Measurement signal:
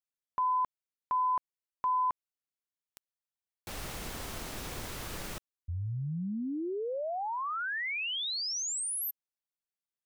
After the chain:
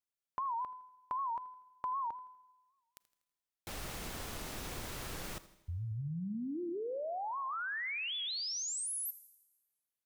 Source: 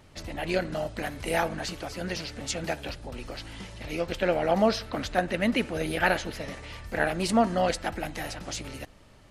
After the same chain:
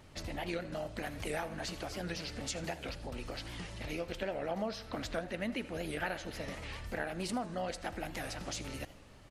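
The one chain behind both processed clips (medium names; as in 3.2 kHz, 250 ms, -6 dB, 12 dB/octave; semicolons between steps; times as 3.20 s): compression 3:1, threshold -35 dBFS; on a send: feedback delay 81 ms, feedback 45%, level -18 dB; on the sum: Schroeder reverb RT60 1.3 s, combs from 33 ms, DRR 19.5 dB; warped record 78 rpm, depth 160 cents; trim -2 dB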